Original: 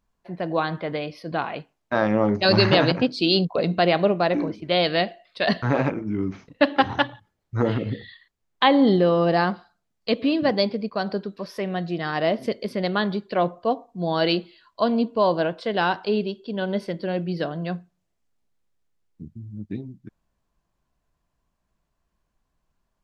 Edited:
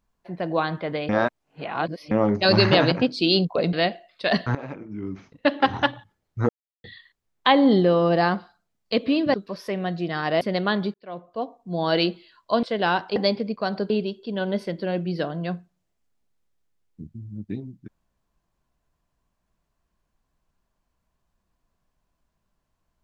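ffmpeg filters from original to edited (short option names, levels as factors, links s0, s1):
-filter_complex "[0:a]asplit=13[s0][s1][s2][s3][s4][s5][s6][s7][s8][s9][s10][s11][s12];[s0]atrim=end=1.092[s13];[s1]atrim=start=1.088:end=2.112,asetpts=PTS-STARTPTS,areverse[s14];[s2]atrim=start=2.108:end=3.732[s15];[s3]atrim=start=4.888:end=5.71,asetpts=PTS-STARTPTS,afade=t=out:st=0.818:d=0.004:c=hsin:silence=0.141254[s16];[s4]atrim=start=5.71:end=7.65,asetpts=PTS-STARTPTS,afade=t=in:d=1.23:silence=0.141254,afade=t=out:st=1.936:d=0.004:c=hsin[s17];[s5]atrim=start=7.65:end=8,asetpts=PTS-STARTPTS,volume=0[s18];[s6]atrim=start=8:end=10.502,asetpts=PTS-STARTPTS,afade=t=in:d=0.004:c=hsin[s19];[s7]atrim=start=11.238:end=12.312[s20];[s8]atrim=start=12.698:end=13.23,asetpts=PTS-STARTPTS,afade=t=out:st=0.528:d=0.004:c=hsin[s21];[s9]atrim=start=13.23:end=14.922,asetpts=PTS-STARTPTS,afade=t=in:d=0.95[s22];[s10]atrim=start=15.578:end=16.112[s23];[s11]atrim=start=10.498:end=11.242[s24];[s12]atrim=start=16.108[s25];[s13][s14]acrossfade=d=0.004:c1=hsin:c2=hsin[s26];[s26][s15]acrossfade=d=0.004:c1=hsin:c2=hsin[s27];[s16][s17][s18][s19]concat=n=4:v=0:a=1[s28];[s27][s28]acrossfade=d=0.004:c1=hsin:c2=hsin[s29];[s29][s20]acrossfade=d=0.004:c1=hsin:c2=hsin[s30];[s21][s22]concat=n=2:v=0:a=1[s31];[s30][s31]acrossfade=d=0.004:c1=hsin:c2=hsin[s32];[s32][s23]acrossfade=d=0.004:c1=hsin:c2=hsin[s33];[s33][s24]acrossfade=d=0.004:c1=hsin:c2=hsin[s34];[s34][s25]acrossfade=d=0.004:c1=hsin:c2=hsin"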